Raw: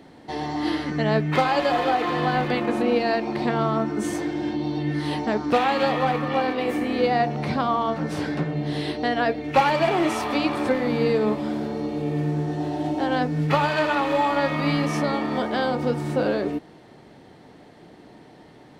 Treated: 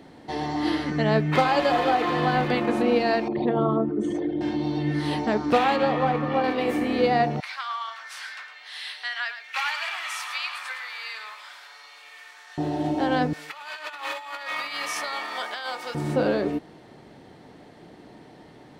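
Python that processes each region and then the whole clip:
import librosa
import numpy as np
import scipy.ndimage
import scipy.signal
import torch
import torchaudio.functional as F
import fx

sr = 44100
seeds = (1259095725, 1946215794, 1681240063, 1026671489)

y = fx.chain(x, sr, fx.envelope_sharpen(power=2.0),
    fx.peak_eq(hz=3300.0, db=14.5, octaves=0.72), at=(3.28, 4.41))
y = fx.chain(y, sr, fx.lowpass(hz=8200.0, slope=12),
    fx.high_shelf(hz=2400.0, db=-8.0), at=(5.76, 6.44))
y = fx.chain(y, sr, fx.highpass(hz=1300.0, slope=24),
    fx.echo_single(ms=109, db=-10.5), at=(7.4, 12.58))
y = fx.chain(y, sr, fx.highpass(hz=1200.0, slope=12),
    fx.high_shelf(hz=7200.0, db=6.5),
    fx.over_compress(threshold_db=-32.0, ratio=-0.5), at=(13.33, 15.95))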